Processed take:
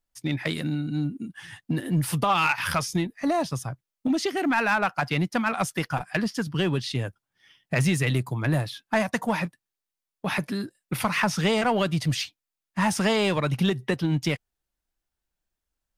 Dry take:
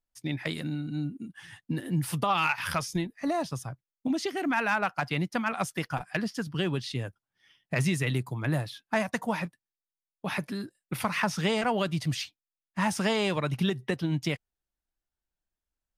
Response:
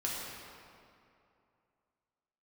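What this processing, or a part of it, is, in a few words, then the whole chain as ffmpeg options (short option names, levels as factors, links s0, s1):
parallel distortion: -filter_complex "[0:a]asplit=2[s0][s1];[s1]asoftclip=type=hard:threshold=0.0473,volume=0.501[s2];[s0][s2]amix=inputs=2:normalize=0,volume=1.19"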